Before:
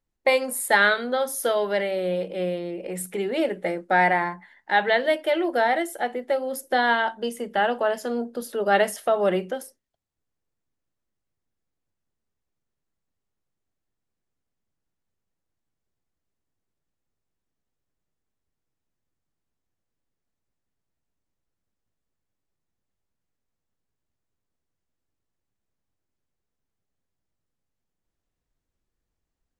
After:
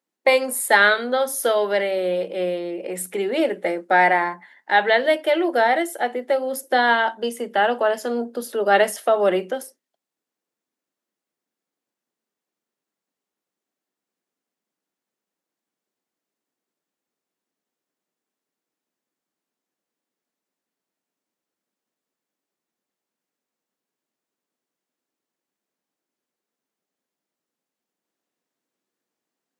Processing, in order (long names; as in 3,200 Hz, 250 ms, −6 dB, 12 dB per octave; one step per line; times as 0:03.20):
high-pass filter 220 Hz 24 dB per octave
level +3.5 dB